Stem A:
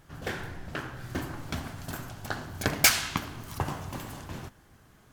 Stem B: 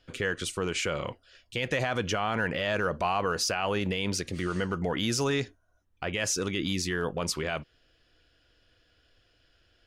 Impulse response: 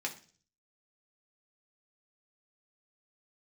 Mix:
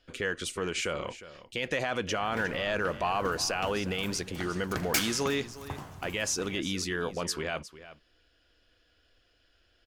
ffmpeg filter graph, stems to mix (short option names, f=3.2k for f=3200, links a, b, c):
-filter_complex "[0:a]adelay=2100,volume=-8dB,asplit=2[a][b];[b]volume=-23.5dB[c];[1:a]equalizer=f=120:t=o:w=0.77:g=-7.5,volume=-1.5dB,asplit=2[d][e];[e]volume=-15.5dB[f];[c][f]amix=inputs=2:normalize=0,aecho=0:1:358:1[g];[a][d][g]amix=inputs=3:normalize=0"